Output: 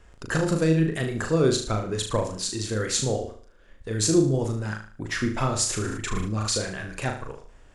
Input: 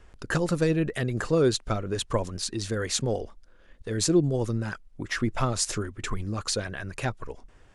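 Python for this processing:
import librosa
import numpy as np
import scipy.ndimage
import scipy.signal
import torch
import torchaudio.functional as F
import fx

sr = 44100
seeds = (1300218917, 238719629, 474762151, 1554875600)

p1 = fx.peak_eq(x, sr, hz=7300.0, db=4.5, octaves=0.23)
p2 = p1 + fx.room_flutter(p1, sr, wall_m=6.4, rt60_s=0.46, dry=0)
y = fx.sustainer(p2, sr, db_per_s=36.0, at=(5.75, 6.57))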